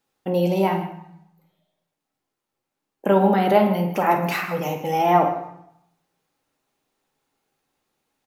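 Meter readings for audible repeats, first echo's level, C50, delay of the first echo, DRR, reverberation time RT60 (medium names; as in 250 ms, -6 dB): 2, -9.5 dB, 5.5 dB, 52 ms, 2.0 dB, 0.75 s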